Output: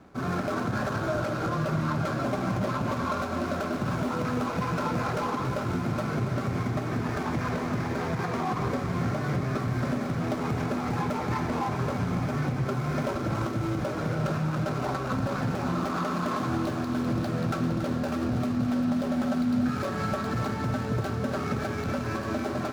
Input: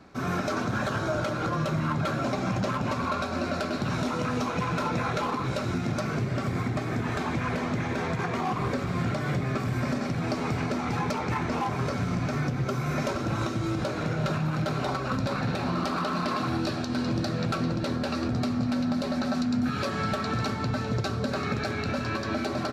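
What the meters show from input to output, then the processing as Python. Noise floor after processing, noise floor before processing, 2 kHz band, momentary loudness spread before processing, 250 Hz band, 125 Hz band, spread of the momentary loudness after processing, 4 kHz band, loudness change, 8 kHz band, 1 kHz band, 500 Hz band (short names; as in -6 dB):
-32 dBFS, -32 dBFS, -2.0 dB, 2 LU, +0.5 dB, 0.0 dB, 2 LU, -5.0 dB, 0.0 dB, -2.0 dB, -0.5 dB, 0.0 dB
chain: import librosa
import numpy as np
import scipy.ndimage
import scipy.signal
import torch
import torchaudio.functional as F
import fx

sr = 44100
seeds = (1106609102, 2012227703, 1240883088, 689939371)

y = scipy.ndimage.median_filter(x, 15, mode='constant')
y = fx.echo_thinned(y, sr, ms=281, feedback_pct=84, hz=420.0, wet_db=-10.5)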